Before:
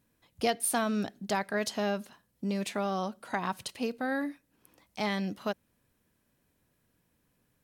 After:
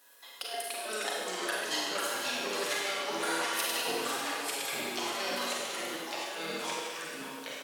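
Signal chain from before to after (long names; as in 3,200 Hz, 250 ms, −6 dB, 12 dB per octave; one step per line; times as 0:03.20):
tilt shelving filter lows −7.5 dB, about 670 Hz
notch filter 2,300 Hz, Q 5.4
comb filter 7.2 ms, depth 56%
in parallel at −1.5 dB: output level in coarse steps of 10 dB
on the sum: brickwall limiter −16 dBFS, peak gain reduction 11 dB
compressor whose output falls as the input rises −35 dBFS, ratio −0.5
four-pole ladder high-pass 350 Hz, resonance 20%
single-tap delay 501 ms −9.5 dB
delay with pitch and tempo change per echo 214 ms, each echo −3 semitones, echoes 3
four-comb reverb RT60 1.5 s, combs from 33 ms, DRR −3.5 dB
level +1 dB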